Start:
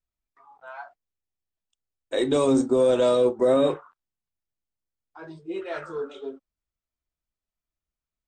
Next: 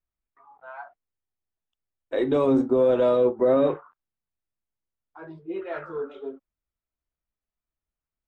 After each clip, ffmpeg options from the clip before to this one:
ffmpeg -i in.wav -af "lowpass=2200" out.wav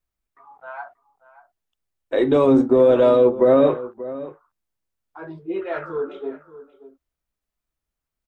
ffmpeg -i in.wav -filter_complex "[0:a]asplit=2[link_01][link_02];[link_02]adelay=583.1,volume=-16dB,highshelf=frequency=4000:gain=-13.1[link_03];[link_01][link_03]amix=inputs=2:normalize=0,volume=5.5dB" out.wav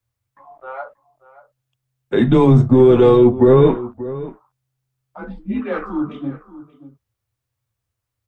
ffmpeg -i in.wav -af "afreqshift=-130,volume=4dB" out.wav

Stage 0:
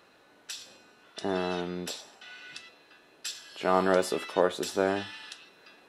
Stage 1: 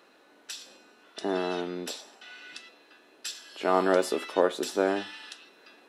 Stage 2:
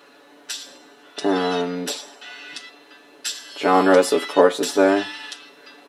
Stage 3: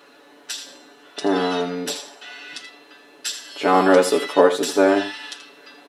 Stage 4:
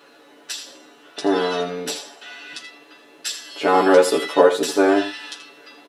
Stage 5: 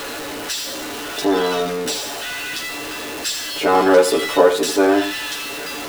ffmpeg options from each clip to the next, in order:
ffmpeg -i in.wav -af "lowshelf=frequency=180:width_type=q:width=1.5:gain=-10.5" out.wav
ffmpeg -i in.wav -af "aecho=1:1:7:0.98,volume=6.5dB" out.wav
ffmpeg -i in.wav -af "aecho=1:1:81:0.251" out.wav
ffmpeg -i in.wav -filter_complex "[0:a]asplit=2[link_01][link_02];[link_02]adelay=13,volume=-5.5dB[link_03];[link_01][link_03]amix=inputs=2:normalize=0,volume=-1dB" out.wav
ffmpeg -i in.wav -af "aeval=exprs='val(0)+0.5*0.0668*sgn(val(0))':channel_layout=same" out.wav

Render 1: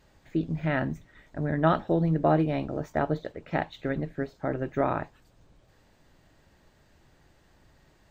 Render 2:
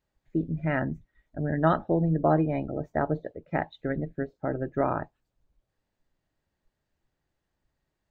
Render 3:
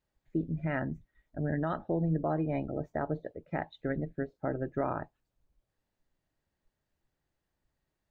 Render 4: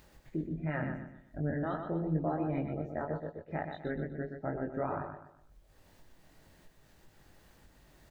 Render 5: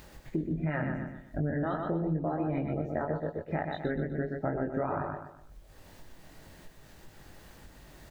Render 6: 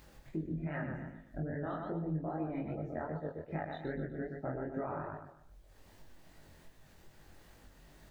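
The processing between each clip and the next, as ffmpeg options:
ffmpeg -i in.wav -af "afftdn=noise_reduction=20:noise_floor=-38" out.wav
ffmpeg -i in.wav -af "alimiter=limit=-18dB:level=0:latency=1:release=208,volume=-3dB" out.wav
ffmpeg -i in.wav -af "acompressor=mode=upward:threshold=-37dB:ratio=2.5,flanger=delay=19.5:depth=3.9:speed=2.8,aecho=1:1:124|248|372|496:0.473|0.166|0.058|0.0203" out.wav
ffmpeg -i in.wav -af "acompressor=threshold=-36dB:ratio=6,volume=8.5dB" out.wav
ffmpeg -i in.wav -af "flanger=delay=18.5:depth=7:speed=2.5,volume=-4dB" out.wav

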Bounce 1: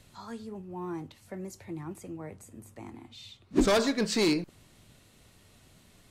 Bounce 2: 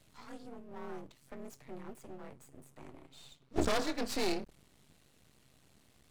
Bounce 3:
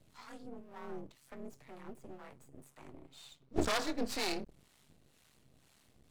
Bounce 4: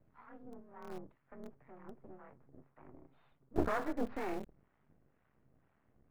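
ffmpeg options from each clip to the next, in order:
ffmpeg -i in.wav -af "afreqshift=38,aeval=exprs='max(val(0),0)':channel_layout=same,volume=-3.5dB" out.wav
ffmpeg -i in.wav -filter_complex "[0:a]acrossover=split=710[link_01][link_02];[link_01]aeval=exprs='val(0)*(1-0.7/2+0.7/2*cos(2*PI*2*n/s))':channel_layout=same[link_03];[link_02]aeval=exprs='val(0)*(1-0.7/2-0.7/2*cos(2*PI*2*n/s))':channel_layout=same[link_04];[link_03][link_04]amix=inputs=2:normalize=0,volume=2dB" out.wav
ffmpeg -i in.wav -filter_complex "[0:a]lowpass=frequency=1800:width=0.5412,lowpass=frequency=1800:width=1.3066,asplit=2[link_01][link_02];[link_02]aeval=exprs='val(0)*gte(abs(val(0)),0.0188)':channel_layout=same,volume=-7dB[link_03];[link_01][link_03]amix=inputs=2:normalize=0,volume=-3.5dB" out.wav

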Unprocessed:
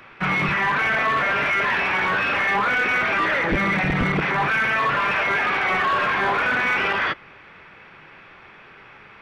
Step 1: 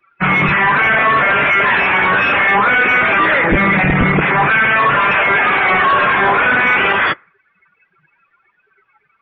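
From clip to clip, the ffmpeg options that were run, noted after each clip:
ffmpeg -i in.wav -af "afftdn=noise_reduction=32:noise_floor=-35,volume=8.5dB" out.wav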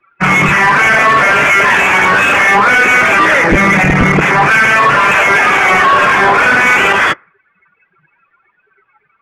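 ffmpeg -i in.wav -af "adynamicsmooth=sensitivity=1.5:basefreq=3400,bass=frequency=250:gain=-1,treble=frequency=4000:gain=3,volume=4dB" out.wav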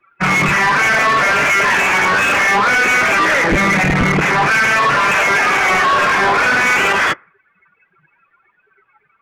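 ffmpeg -i in.wav -af "acontrast=61,volume=-8dB" out.wav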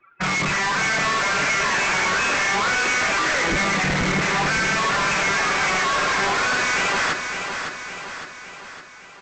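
ffmpeg -i in.wav -af "aresample=16000,asoftclip=type=tanh:threshold=-21dB,aresample=44100,aecho=1:1:560|1120|1680|2240|2800|3360|3920:0.447|0.241|0.13|0.0703|0.038|0.0205|0.0111" out.wav

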